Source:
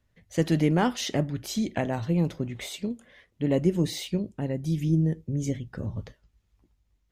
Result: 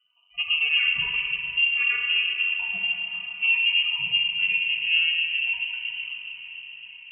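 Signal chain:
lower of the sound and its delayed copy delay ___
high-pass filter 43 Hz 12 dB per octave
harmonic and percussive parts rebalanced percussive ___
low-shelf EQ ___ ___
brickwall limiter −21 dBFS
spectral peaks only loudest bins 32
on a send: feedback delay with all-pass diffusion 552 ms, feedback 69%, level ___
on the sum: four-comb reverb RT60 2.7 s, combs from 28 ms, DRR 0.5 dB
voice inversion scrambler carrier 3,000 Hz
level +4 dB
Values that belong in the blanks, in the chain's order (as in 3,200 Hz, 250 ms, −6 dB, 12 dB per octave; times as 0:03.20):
3.9 ms, −16 dB, 69 Hz, +5.5 dB, −15 dB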